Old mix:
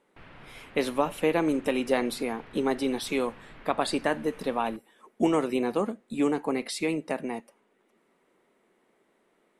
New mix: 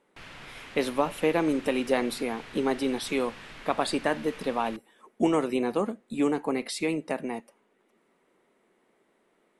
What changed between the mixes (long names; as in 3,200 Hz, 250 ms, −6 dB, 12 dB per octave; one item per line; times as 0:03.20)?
background: remove head-to-tape spacing loss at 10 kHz 33 dB
master: add linear-phase brick-wall low-pass 12,000 Hz